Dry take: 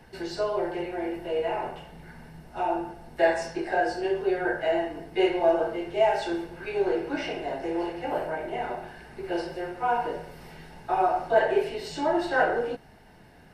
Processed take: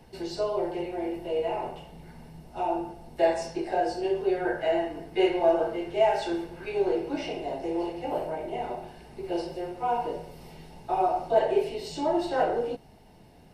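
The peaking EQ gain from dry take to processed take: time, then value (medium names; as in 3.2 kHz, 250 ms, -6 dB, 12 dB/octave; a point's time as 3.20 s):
peaking EQ 1.6 kHz 0.74 oct
4.06 s -10.5 dB
4.56 s -4 dB
6.49 s -4 dB
7.19 s -12.5 dB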